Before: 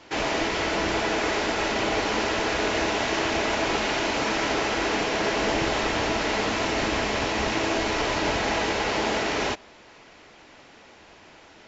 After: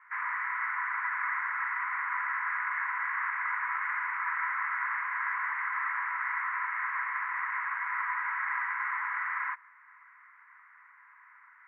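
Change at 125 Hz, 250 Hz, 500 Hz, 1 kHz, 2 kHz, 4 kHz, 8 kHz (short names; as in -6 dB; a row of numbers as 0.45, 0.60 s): under -40 dB, under -40 dB, under -40 dB, -5.0 dB, -2.0 dB, under -35 dB, n/a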